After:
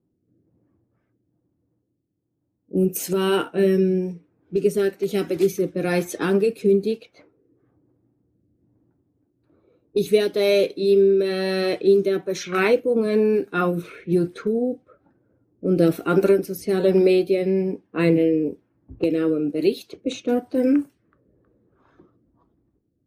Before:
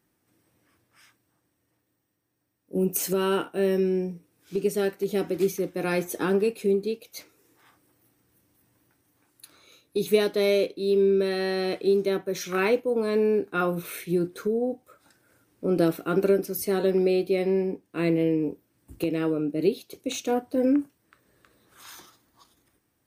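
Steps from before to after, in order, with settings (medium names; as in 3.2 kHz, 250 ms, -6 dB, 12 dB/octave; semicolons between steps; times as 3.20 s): coarse spectral quantiser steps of 15 dB; level-controlled noise filter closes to 450 Hz, open at -24 dBFS; rotary cabinet horn 1.1 Hz; trim +6.5 dB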